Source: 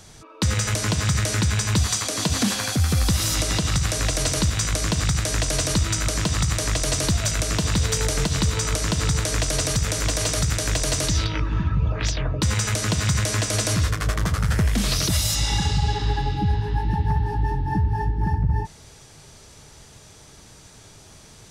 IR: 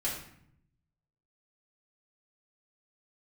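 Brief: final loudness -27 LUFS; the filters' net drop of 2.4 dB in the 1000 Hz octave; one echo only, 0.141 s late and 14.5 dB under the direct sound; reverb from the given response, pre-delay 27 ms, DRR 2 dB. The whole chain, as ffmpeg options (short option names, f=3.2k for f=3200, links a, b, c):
-filter_complex "[0:a]equalizer=f=1k:t=o:g=-3,aecho=1:1:141:0.188,asplit=2[a][b];[1:a]atrim=start_sample=2205,adelay=27[c];[b][c]afir=irnorm=-1:irlink=0,volume=-7dB[d];[a][d]amix=inputs=2:normalize=0,volume=-7dB"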